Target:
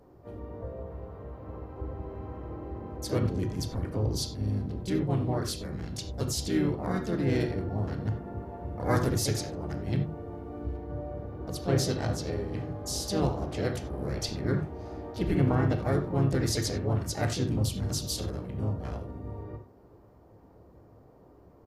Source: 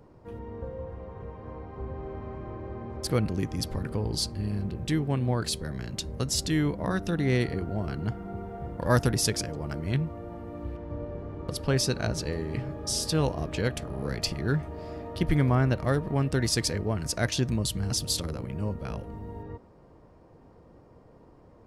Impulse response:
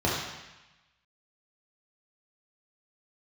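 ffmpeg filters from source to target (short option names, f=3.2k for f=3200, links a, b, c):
-filter_complex "[0:a]asplit=3[a][b][c];[b]asetrate=35002,aresample=44100,atempo=1.25992,volume=-8dB[d];[c]asetrate=55563,aresample=44100,atempo=0.793701,volume=-5dB[e];[a][d][e]amix=inputs=3:normalize=0,asplit=2[f][g];[1:a]atrim=start_sample=2205,atrim=end_sample=4410[h];[g][h]afir=irnorm=-1:irlink=0,volume=-14.5dB[i];[f][i]amix=inputs=2:normalize=0,volume=-8dB" -ar 48000 -c:a mp2 -b:a 192k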